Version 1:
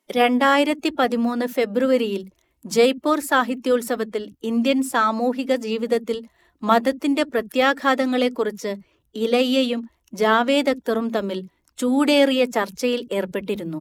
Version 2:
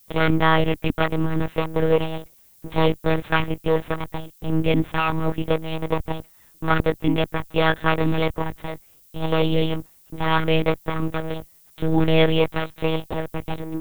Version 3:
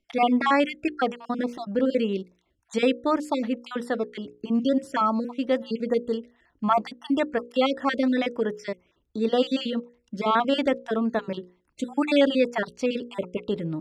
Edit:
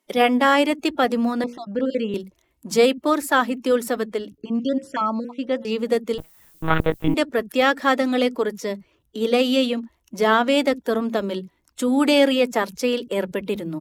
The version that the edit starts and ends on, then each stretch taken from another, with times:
1
0:01.44–0:02.14: punch in from 3
0:04.38–0:05.65: punch in from 3
0:06.18–0:07.14: punch in from 2

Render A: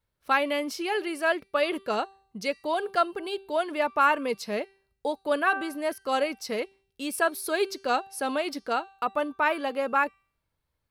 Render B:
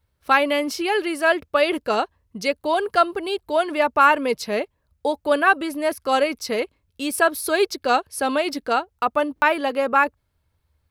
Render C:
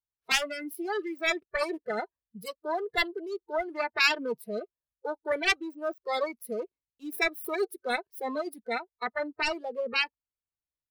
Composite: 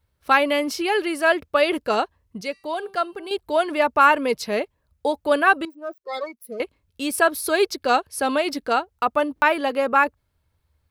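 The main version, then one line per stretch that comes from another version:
B
0:02.41–0:03.31: punch in from A
0:05.65–0:06.60: punch in from C

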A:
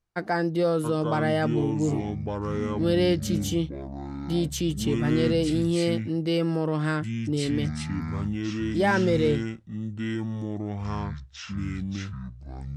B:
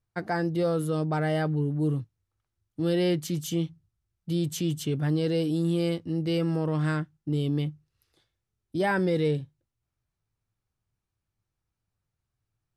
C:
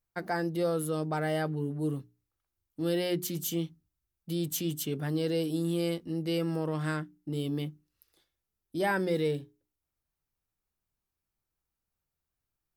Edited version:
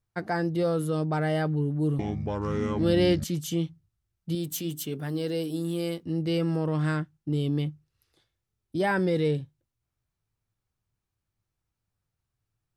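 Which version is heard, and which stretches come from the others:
B
0:01.99–0:03.24: punch in from A
0:04.35–0:06.03: punch in from C

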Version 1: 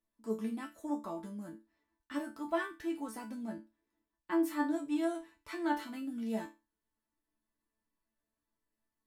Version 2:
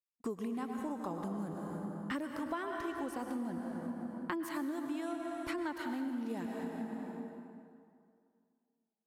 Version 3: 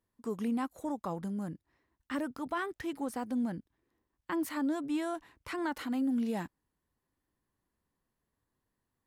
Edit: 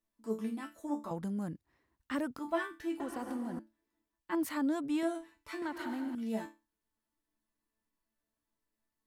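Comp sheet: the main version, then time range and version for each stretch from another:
1
0:01.11–0:02.39: punch in from 3
0:03.00–0:03.59: punch in from 2
0:04.35–0:05.03: punch in from 3
0:05.62–0:06.15: punch in from 2

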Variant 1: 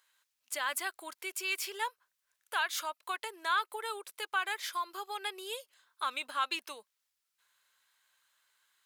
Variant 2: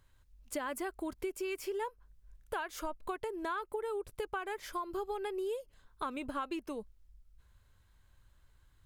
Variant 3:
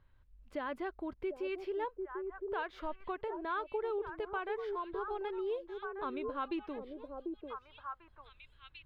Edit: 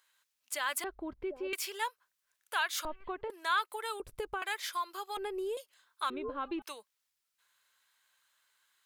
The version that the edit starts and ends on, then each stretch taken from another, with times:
1
0:00.84–0:01.53: punch in from 3
0:02.85–0:03.30: punch in from 3
0:04.00–0:04.42: punch in from 2
0:05.17–0:05.57: punch in from 2
0:06.10–0:06.62: punch in from 3

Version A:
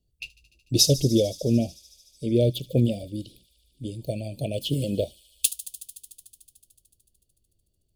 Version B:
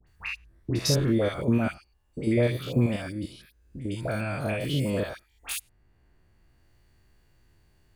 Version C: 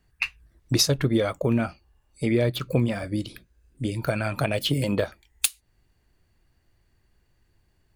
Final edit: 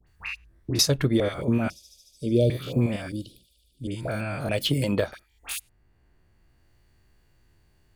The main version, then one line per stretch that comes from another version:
B
0:00.79–0:01.20: punch in from C
0:01.70–0:02.50: punch in from A
0:03.12–0:03.87: punch in from A
0:04.49–0:05.13: punch in from C

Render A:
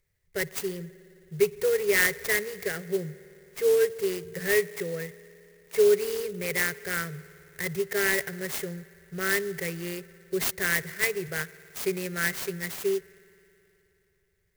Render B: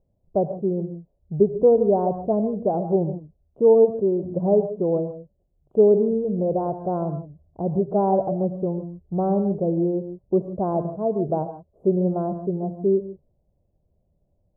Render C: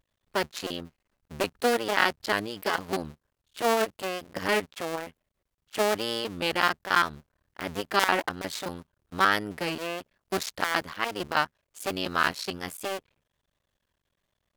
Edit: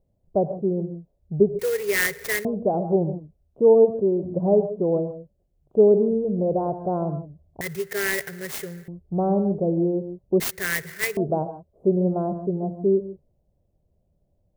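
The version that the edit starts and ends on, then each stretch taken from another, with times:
B
0:01.59–0:02.45: punch in from A
0:07.61–0:08.88: punch in from A
0:10.40–0:11.17: punch in from A
not used: C

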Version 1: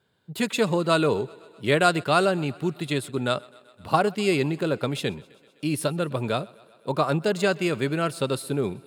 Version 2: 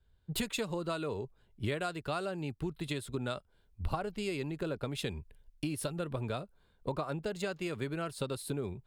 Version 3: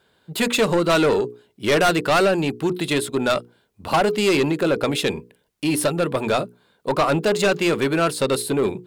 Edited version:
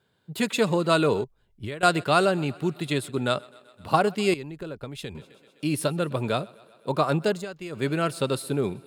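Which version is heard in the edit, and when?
1
0:01.24–0:01.83: punch in from 2
0:04.34–0:05.15: punch in from 2
0:07.37–0:07.78: punch in from 2, crossfade 0.16 s
not used: 3

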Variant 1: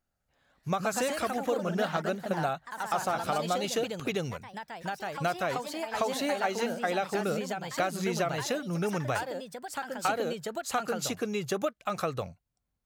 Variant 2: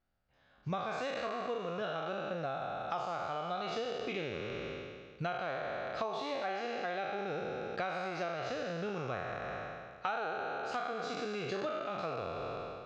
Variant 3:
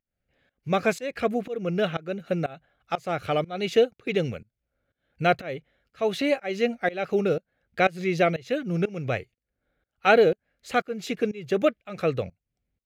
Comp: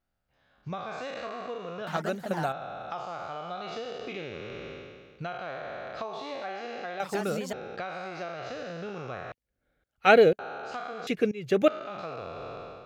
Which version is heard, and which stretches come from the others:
2
0:01.87–0:02.52: punch in from 1
0:07.00–0:07.53: punch in from 1
0:09.32–0:10.39: punch in from 3
0:11.07–0:11.68: punch in from 3

